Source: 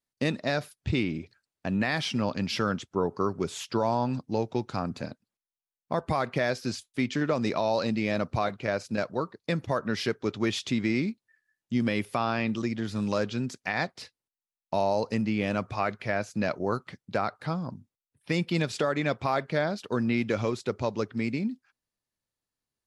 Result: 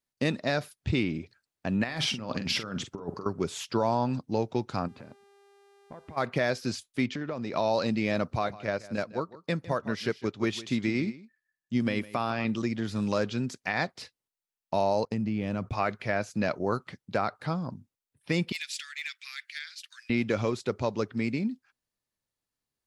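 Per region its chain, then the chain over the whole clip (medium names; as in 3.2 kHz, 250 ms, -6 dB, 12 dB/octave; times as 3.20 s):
1.84–3.26 s: compressor with a negative ratio -32 dBFS, ratio -0.5 + doubling 45 ms -10.5 dB
4.87–6.16 s: low-pass 2.5 kHz + compression, threshold -42 dBFS + mains buzz 400 Hz, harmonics 30, -60 dBFS -7 dB/octave
7.06–7.53 s: distance through air 87 m + compression 2.5:1, threshold -33 dBFS
8.33–12.45 s: delay 156 ms -12.5 dB + upward expansion, over -39 dBFS
15.05–15.73 s: gate -48 dBFS, range -28 dB + bass shelf 360 Hz +10.5 dB + compression 3:1, threshold -29 dBFS
18.52–20.10 s: steep high-pass 1.9 kHz + treble shelf 9.3 kHz +6.5 dB + overload inside the chain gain 26.5 dB
whole clip: none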